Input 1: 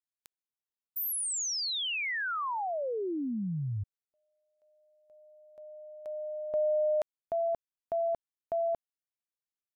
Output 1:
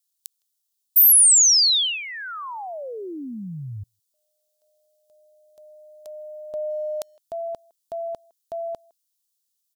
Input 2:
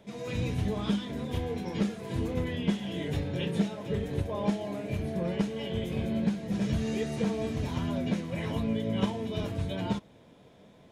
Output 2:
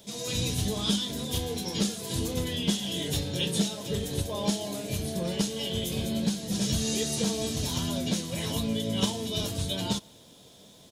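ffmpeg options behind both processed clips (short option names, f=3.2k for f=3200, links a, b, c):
-filter_complex "[0:a]asplit=2[a][b];[b]adelay=160,highpass=300,lowpass=3.4k,asoftclip=type=hard:threshold=-25dB,volume=-27dB[c];[a][c]amix=inputs=2:normalize=0,aexciter=amount=9.2:drive=1.3:freq=3.2k"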